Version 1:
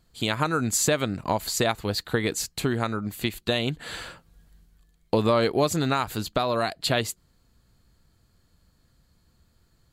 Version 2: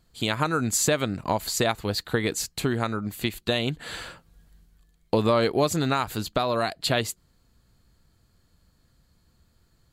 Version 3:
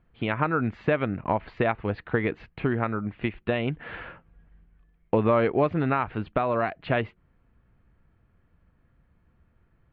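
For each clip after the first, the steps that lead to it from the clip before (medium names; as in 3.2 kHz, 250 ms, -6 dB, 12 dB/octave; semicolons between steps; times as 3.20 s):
no audible change
steep low-pass 2.6 kHz 36 dB/octave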